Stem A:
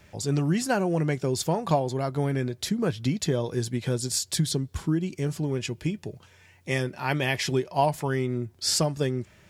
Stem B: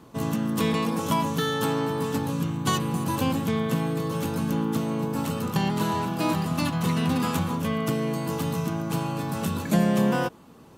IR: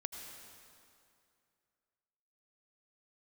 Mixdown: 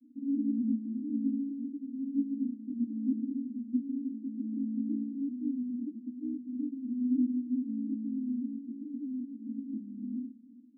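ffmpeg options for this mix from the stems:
-filter_complex "[0:a]acompressor=threshold=-25dB:ratio=6,volume=1dB[a];[1:a]flanger=delay=20:depth=3.5:speed=0.55,volume=0dB,asplit=2[b][c];[c]volume=-11.5dB[d];[2:a]atrim=start_sample=2205[e];[d][e]afir=irnorm=-1:irlink=0[f];[a][b][f]amix=inputs=3:normalize=0,asuperpass=centerf=260:order=12:qfactor=3.3"

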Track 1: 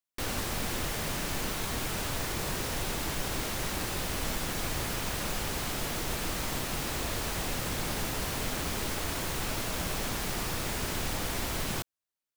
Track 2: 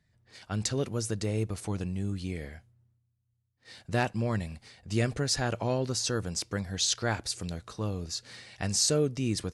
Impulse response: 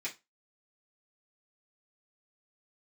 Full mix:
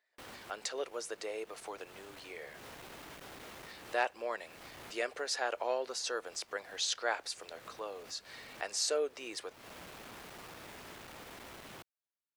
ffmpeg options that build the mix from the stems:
-filter_complex "[0:a]asoftclip=type=tanh:threshold=-36dB,volume=-7dB[a];[1:a]highpass=f=450:w=0.5412,highpass=f=450:w=1.3066,volume=-1dB,asplit=2[b][c];[c]apad=whole_len=545239[d];[a][d]sidechaincompress=threshold=-52dB:ratio=4:attack=16:release=210[e];[e][b]amix=inputs=2:normalize=0,highpass=f=99:p=1,bass=f=250:g=-6,treble=f=4k:g=-8"

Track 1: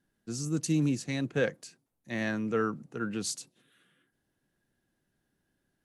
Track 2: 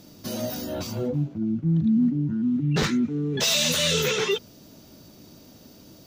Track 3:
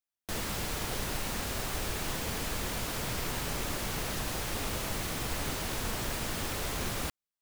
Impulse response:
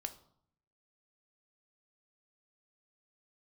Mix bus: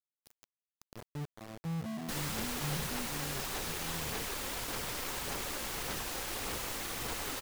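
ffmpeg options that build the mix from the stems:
-filter_complex "[1:a]bass=f=250:g=7,treble=f=4k:g=6,acrossover=split=210[a][b];[b]acompressor=threshold=-31dB:ratio=6[c];[a][c]amix=inputs=2:normalize=0,volume=-18.5dB[d];[2:a]acrossover=split=290[e][f];[e]acompressor=threshold=-43dB:ratio=6[g];[g][f]amix=inputs=2:normalize=0,aphaser=in_gain=1:out_gain=1:delay=3.8:decay=0.29:speed=1.7:type=sinusoidal,adelay=1800,volume=-2dB[h];[d][h]amix=inputs=2:normalize=0,bandreject=f=630:w=13,aeval=exprs='val(0)*gte(abs(val(0)),0.0119)':c=same"

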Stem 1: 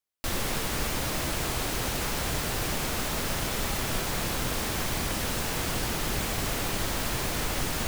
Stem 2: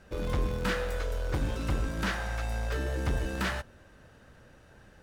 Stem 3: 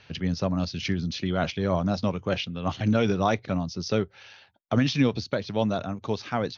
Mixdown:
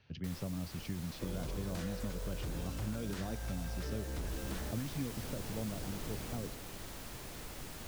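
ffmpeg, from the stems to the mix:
-filter_complex "[0:a]acrusher=bits=5:mix=0:aa=0.000001,volume=-9dB,afade=t=in:st=4.25:d=0.31:silence=0.298538,afade=t=out:st=6.33:d=0.27:silence=0.446684[a];[1:a]aeval=exprs='0.0473*(abs(mod(val(0)/0.0473+3,4)-2)-1)':c=same,adelay=1100,volume=-4.5dB[b];[2:a]lowshelf=f=350:g=10.5,volume=-16.5dB[c];[a][b][c]amix=inputs=3:normalize=0,acrossover=split=590|3800[d][e][f];[d]acompressor=threshold=-36dB:ratio=4[g];[e]acompressor=threshold=-52dB:ratio=4[h];[f]acompressor=threshold=-49dB:ratio=4[i];[g][h][i]amix=inputs=3:normalize=0"

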